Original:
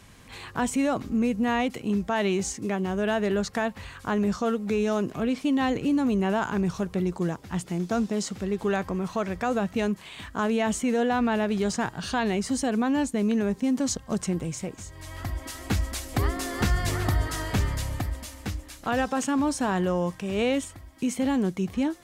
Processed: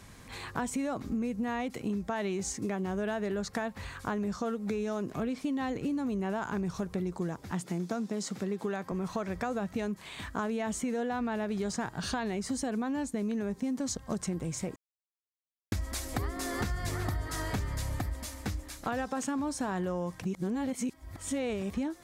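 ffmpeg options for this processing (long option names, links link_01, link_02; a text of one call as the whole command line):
ffmpeg -i in.wav -filter_complex "[0:a]asettb=1/sr,asplit=3[link_01][link_02][link_03];[link_01]atrim=end=7.514[link_04];[link_02]atrim=start=7.51:end=8.92,asetpts=PTS-STARTPTS,afade=type=in:duration=0.004:curve=qsin,afade=type=out:start_time=1.406:duration=0.004:curve=qsin,highpass=frequency=130:width=0.5412,highpass=frequency=130:width=1.3066[link_05];[link_03]atrim=start=8.916[link_06];[link_04][link_05]acrossfade=duration=0.004:curve1=hsin:curve2=qsin[link_07];[link_07][link_06]acrossfade=duration=0.004:curve1=qsin:curve2=hsin,asplit=5[link_08][link_09][link_10][link_11][link_12];[link_08]atrim=end=14.76,asetpts=PTS-STARTPTS,afade=type=out:start_time=14.756:duration=0.004:curve=hsin[link_13];[link_09]atrim=start=14.76:end=15.72,asetpts=PTS-STARTPTS,volume=0[link_14];[link_10]atrim=start=15.72:end=20.222,asetpts=PTS-STARTPTS,afade=type=in:duration=0.004:curve=hsin[link_15];[link_11]atrim=start=20.218:end=21.702,asetpts=PTS-STARTPTS,areverse[link_16];[link_12]atrim=start=21.698[link_17];[link_13][link_14][link_15]concat=n=3:v=0:a=1[link_18];[link_18][link_16]acrossfade=duration=0.004:curve1=hsin:curve2=hsin[link_19];[link_19][link_17]acrossfade=duration=0.004:curve1=hsin:curve2=hsin,equalizer=frequency=2900:width_type=o:width=0.41:gain=-5,acompressor=threshold=-30dB:ratio=6" out.wav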